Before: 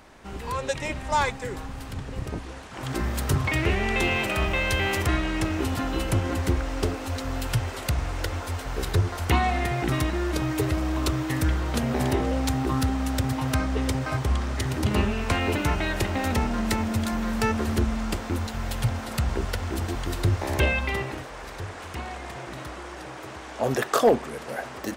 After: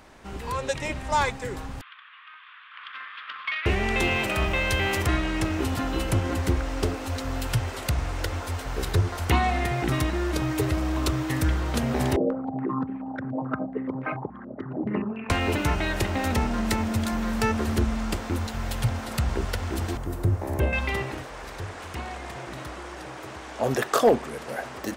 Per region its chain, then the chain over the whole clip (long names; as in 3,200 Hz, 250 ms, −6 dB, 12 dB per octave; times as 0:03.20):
0:01.81–0:03.66: Chebyshev band-pass filter 1,100–3,500 Hz, order 4 + highs frequency-modulated by the lows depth 0.12 ms
0:12.16–0:15.30: spectral envelope exaggerated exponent 2 + high-pass filter 170 Hz 24 dB per octave + low-pass on a step sequencer 7 Hz 580–2,400 Hz
0:19.97–0:20.73: high-pass filter 44 Hz + parametric band 3,800 Hz −15 dB 2.6 octaves
whole clip: no processing